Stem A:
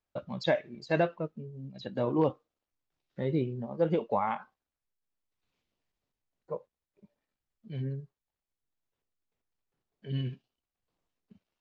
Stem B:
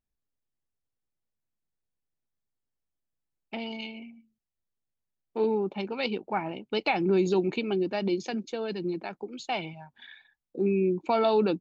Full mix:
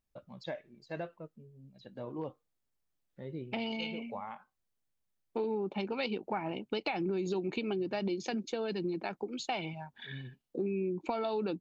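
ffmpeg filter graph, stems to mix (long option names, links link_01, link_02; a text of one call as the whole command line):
ffmpeg -i stem1.wav -i stem2.wav -filter_complex "[0:a]volume=-12dB[link_01];[1:a]acompressor=threshold=-28dB:ratio=4,volume=2dB,asplit=2[link_02][link_03];[link_03]apad=whole_len=511848[link_04];[link_01][link_04]sidechaincompress=threshold=-37dB:ratio=8:attack=16:release=461[link_05];[link_05][link_02]amix=inputs=2:normalize=0,acompressor=threshold=-34dB:ratio=2" out.wav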